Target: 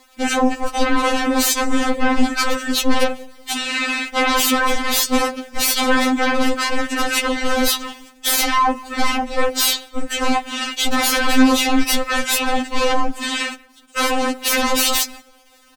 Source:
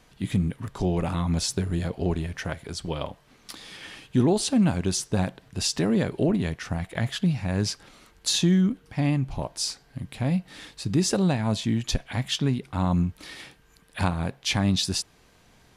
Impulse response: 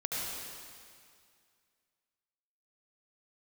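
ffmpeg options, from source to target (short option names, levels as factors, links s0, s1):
-filter_complex "[0:a]agate=range=0.282:threshold=0.00398:ratio=16:detection=peak,lowshelf=f=82:g=-6.5,aeval=exprs='0.266*sin(PI/2*10*val(0)/0.266)':c=same,asetrate=35002,aresample=44100,atempo=1.25992,aeval=exprs='val(0)*gte(abs(val(0)),0.00891)':c=same,asplit=2[s0][s1];[s1]asetrate=35002,aresample=44100,atempo=1.25992,volume=0.316[s2];[s0][s2]amix=inputs=2:normalize=0,asplit=2[s3][s4];[s4]adelay=183,lowpass=f=1300:p=1,volume=0.0794,asplit=2[s5][s6];[s6]adelay=183,lowpass=f=1300:p=1,volume=0.43,asplit=2[s7][s8];[s8]adelay=183,lowpass=f=1300:p=1,volume=0.43[s9];[s5][s7][s9]amix=inputs=3:normalize=0[s10];[s3][s10]amix=inputs=2:normalize=0,afftfilt=real='re*3.46*eq(mod(b,12),0)':imag='im*3.46*eq(mod(b,12),0)':win_size=2048:overlap=0.75"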